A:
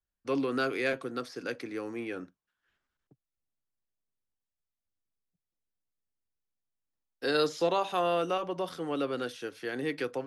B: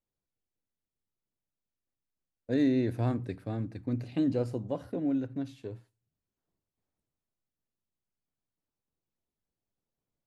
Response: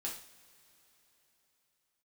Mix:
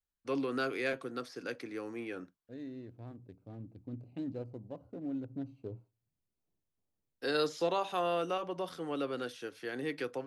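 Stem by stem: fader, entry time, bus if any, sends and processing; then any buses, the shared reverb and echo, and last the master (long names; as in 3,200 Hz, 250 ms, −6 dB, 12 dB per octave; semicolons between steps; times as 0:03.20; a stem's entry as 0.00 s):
−4.0 dB, 0.00 s, no send, no processing
0:03.11 −18.5 dB → 0:03.68 −11 dB → 0:04.89 −11 dB → 0:05.61 −2 dB, 0.00 s, no send, adaptive Wiener filter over 25 samples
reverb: not used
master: no processing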